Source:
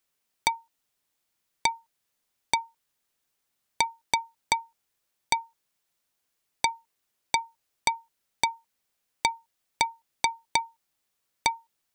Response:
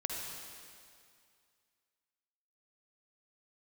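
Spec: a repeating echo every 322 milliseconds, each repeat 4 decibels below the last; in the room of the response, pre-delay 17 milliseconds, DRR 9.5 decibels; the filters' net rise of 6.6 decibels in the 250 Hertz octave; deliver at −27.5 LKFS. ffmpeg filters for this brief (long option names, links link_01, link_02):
-filter_complex "[0:a]equalizer=frequency=250:width_type=o:gain=8.5,aecho=1:1:322|644|966|1288|1610|1932|2254|2576|2898:0.631|0.398|0.25|0.158|0.0994|0.0626|0.0394|0.0249|0.0157,asplit=2[link_01][link_02];[1:a]atrim=start_sample=2205,adelay=17[link_03];[link_02][link_03]afir=irnorm=-1:irlink=0,volume=-12dB[link_04];[link_01][link_04]amix=inputs=2:normalize=0,volume=2.5dB"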